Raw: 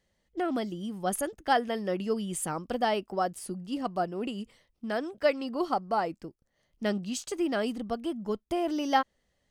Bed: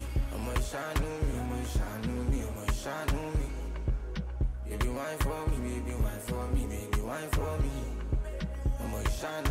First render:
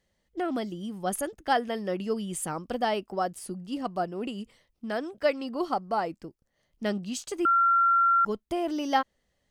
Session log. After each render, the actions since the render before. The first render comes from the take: 7.45–8.25 bleep 1370 Hz -18.5 dBFS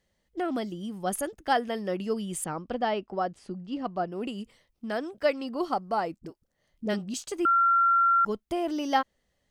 2.44–4.12 air absorption 140 m; 6.19–7.14 dispersion highs, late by 44 ms, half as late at 410 Hz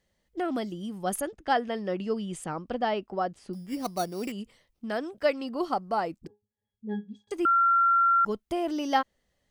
1.2–2.45 air absorption 65 m; 3.53–4.32 sample-rate reducer 5100 Hz; 6.27–7.31 octave resonator G#, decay 0.19 s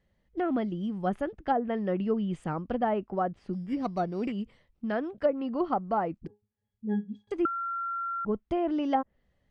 treble ducked by the level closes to 740 Hz, closed at -20.5 dBFS; tone controls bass +6 dB, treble -14 dB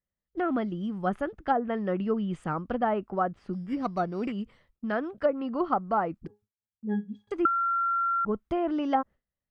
gate with hold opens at -54 dBFS; bell 1300 Hz +6.5 dB 0.7 oct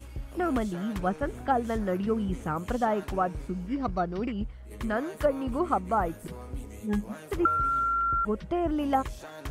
add bed -7.5 dB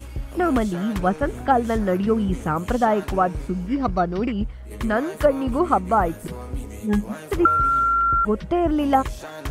gain +7.5 dB

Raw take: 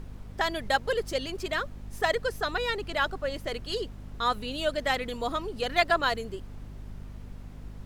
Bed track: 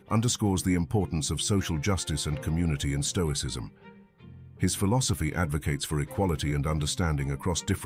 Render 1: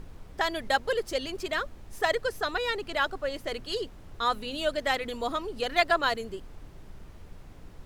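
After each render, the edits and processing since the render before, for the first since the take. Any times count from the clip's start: notches 50/100/150/200/250 Hz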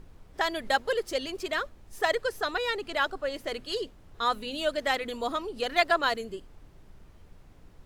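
noise print and reduce 6 dB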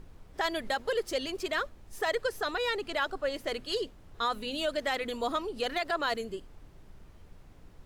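limiter -20 dBFS, peak gain reduction 11.5 dB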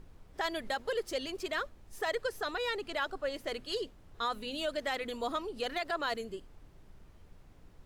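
gain -3.5 dB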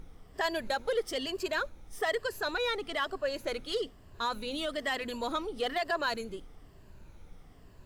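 moving spectral ripple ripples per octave 1.4, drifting -1.1 Hz, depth 8 dB; in parallel at -8 dB: soft clip -35 dBFS, distortion -8 dB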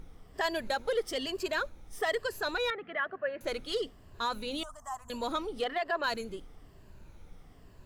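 2.7–3.41 speaker cabinet 160–2200 Hz, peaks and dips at 190 Hz +7 dB, 280 Hz -8 dB, 420 Hz -5 dB, 940 Hz -9 dB, 1700 Hz +5 dB; 4.63–5.1 EQ curve 110 Hz 0 dB, 310 Hz -29 dB, 520 Hz -27 dB, 750 Hz -2 dB, 1100 Hz +3 dB, 2100 Hz -28 dB, 4300 Hz -29 dB, 6300 Hz +3 dB, 14000 Hz -7 dB; 5.64–6.04 tone controls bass -8 dB, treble -13 dB

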